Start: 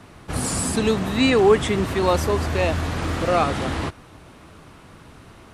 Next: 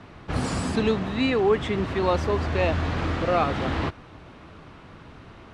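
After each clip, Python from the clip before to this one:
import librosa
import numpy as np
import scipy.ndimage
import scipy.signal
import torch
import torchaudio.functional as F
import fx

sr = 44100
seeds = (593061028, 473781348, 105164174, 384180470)

y = scipy.signal.sosfilt(scipy.signal.butter(2, 4100.0, 'lowpass', fs=sr, output='sos'), x)
y = fx.rider(y, sr, range_db=3, speed_s=0.5)
y = y * 10.0 ** (-3.0 / 20.0)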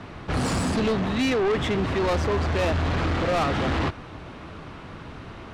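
y = 10.0 ** (-26.0 / 20.0) * np.tanh(x / 10.0 ** (-26.0 / 20.0))
y = y * 10.0 ** (6.0 / 20.0)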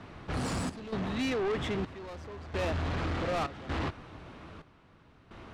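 y = fx.step_gate(x, sr, bpm=65, pattern='xxx.xxxx...x', floor_db=-12.0, edge_ms=4.5)
y = y * 10.0 ** (-8.0 / 20.0)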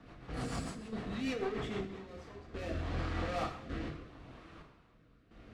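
y = fx.rev_double_slope(x, sr, seeds[0], early_s=0.6, late_s=2.4, knee_db=-18, drr_db=-1.0)
y = fx.rotary_switch(y, sr, hz=6.7, then_hz=0.75, switch_at_s=1.57)
y = y * 10.0 ** (-7.0 / 20.0)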